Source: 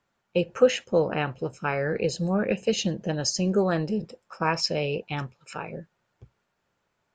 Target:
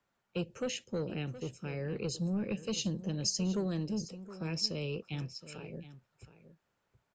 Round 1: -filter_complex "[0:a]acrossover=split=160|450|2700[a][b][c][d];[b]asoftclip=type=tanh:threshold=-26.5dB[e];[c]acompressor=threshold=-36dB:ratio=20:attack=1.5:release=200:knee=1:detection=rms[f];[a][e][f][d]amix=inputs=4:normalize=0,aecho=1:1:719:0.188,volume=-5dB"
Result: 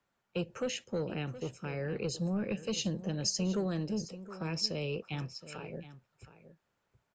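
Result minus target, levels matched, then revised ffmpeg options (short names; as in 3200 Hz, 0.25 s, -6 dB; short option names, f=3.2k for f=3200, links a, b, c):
compressor: peak gain reduction -10 dB
-filter_complex "[0:a]acrossover=split=160|450|2700[a][b][c][d];[b]asoftclip=type=tanh:threshold=-26.5dB[e];[c]acompressor=threshold=-46.5dB:ratio=20:attack=1.5:release=200:knee=1:detection=rms[f];[a][e][f][d]amix=inputs=4:normalize=0,aecho=1:1:719:0.188,volume=-5dB"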